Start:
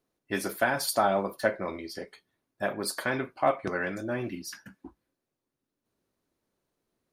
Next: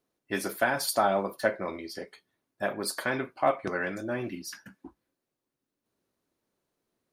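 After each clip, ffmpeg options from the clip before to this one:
ffmpeg -i in.wav -af "lowshelf=frequency=83:gain=-7" out.wav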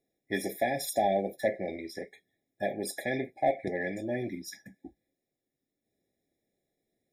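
ffmpeg -i in.wav -af "asoftclip=type=tanh:threshold=-13.5dB,afftfilt=real='re*eq(mod(floor(b*sr/1024/820),2),0)':imag='im*eq(mod(floor(b*sr/1024/820),2),0)':win_size=1024:overlap=0.75" out.wav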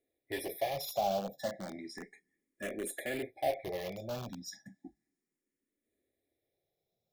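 ffmpeg -i in.wav -filter_complex "[0:a]asplit=2[link_01][link_02];[link_02]aeval=exprs='(mod(25.1*val(0)+1,2)-1)/25.1':channel_layout=same,volume=-5.5dB[link_03];[link_01][link_03]amix=inputs=2:normalize=0,asplit=2[link_04][link_05];[link_05]afreqshift=0.33[link_06];[link_04][link_06]amix=inputs=2:normalize=1,volume=-4.5dB" out.wav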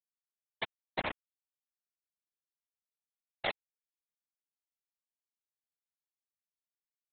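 ffmpeg -i in.wav -af "aresample=8000,acrusher=bits=3:mix=0:aa=0.000001,aresample=44100,afftfilt=real='hypot(re,im)*cos(2*PI*random(0))':imag='hypot(re,im)*sin(2*PI*random(1))':win_size=512:overlap=0.75,volume=4dB" out.wav

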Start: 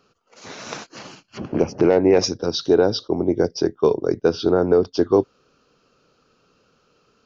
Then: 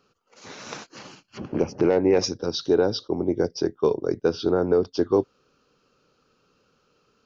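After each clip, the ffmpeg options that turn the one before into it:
ffmpeg -i in.wav -af "bandreject=frequency=670:width=12,volume=-4dB" out.wav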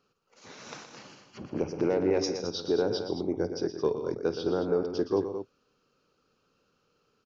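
ffmpeg -i in.wav -af "aecho=1:1:51|119|161|217:0.133|0.335|0.158|0.316,volume=-7dB" out.wav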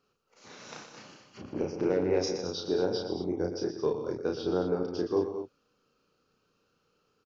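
ffmpeg -i in.wav -filter_complex "[0:a]asplit=2[link_01][link_02];[link_02]adelay=33,volume=-3dB[link_03];[link_01][link_03]amix=inputs=2:normalize=0,volume=-3dB" out.wav

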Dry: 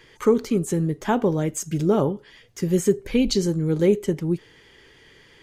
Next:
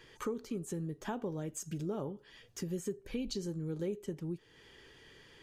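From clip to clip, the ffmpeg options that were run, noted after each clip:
ffmpeg -i in.wav -af "bandreject=frequency=2100:width=9.5,acompressor=threshold=-35dB:ratio=2.5,volume=-5.5dB" out.wav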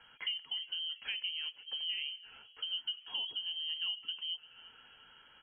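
ffmpeg -i in.wav -filter_complex "[0:a]asplit=4[link_01][link_02][link_03][link_04];[link_02]adelay=345,afreqshift=70,volume=-18.5dB[link_05];[link_03]adelay=690,afreqshift=140,volume=-26dB[link_06];[link_04]adelay=1035,afreqshift=210,volume=-33.6dB[link_07];[link_01][link_05][link_06][link_07]amix=inputs=4:normalize=0,lowpass=frequency=2800:width_type=q:width=0.5098,lowpass=frequency=2800:width_type=q:width=0.6013,lowpass=frequency=2800:width_type=q:width=0.9,lowpass=frequency=2800:width_type=q:width=2.563,afreqshift=-3300,volume=-1dB" out.wav

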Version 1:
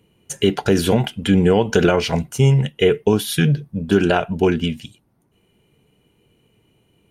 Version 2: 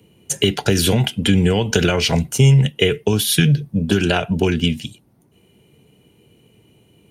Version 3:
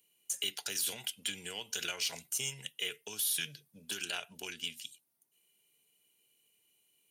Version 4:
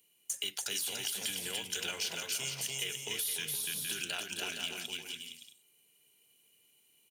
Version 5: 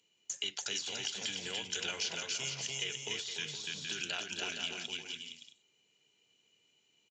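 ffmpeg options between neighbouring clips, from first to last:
ffmpeg -i in.wav -filter_complex "[0:a]highpass=66,equalizer=frequency=1300:width_type=o:width=1.6:gain=-5.5,acrossover=split=120|1400|4200[link_01][link_02][link_03][link_04];[link_02]acompressor=threshold=-24dB:ratio=6[link_05];[link_01][link_05][link_03][link_04]amix=inputs=4:normalize=0,volume=7.5dB" out.wav
ffmpeg -i in.wav -af "aderivative,alimiter=limit=-18.5dB:level=0:latency=1:release=18,aeval=exprs='0.119*(cos(1*acos(clip(val(0)/0.119,-1,1)))-cos(1*PI/2))+0.00376*(cos(7*acos(clip(val(0)/0.119,-1,1)))-cos(7*PI/2))':channel_layout=same,volume=-4.5dB" out.wav
ffmpeg -i in.wav -af "acrusher=bits=5:mode=log:mix=0:aa=0.000001,aecho=1:1:290|464|568.4|631|668.6:0.631|0.398|0.251|0.158|0.1,acompressor=threshold=-35dB:ratio=4,volume=2.5dB" out.wav
ffmpeg -i in.wav -af "aresample=16000,aresample=44100" out.wav

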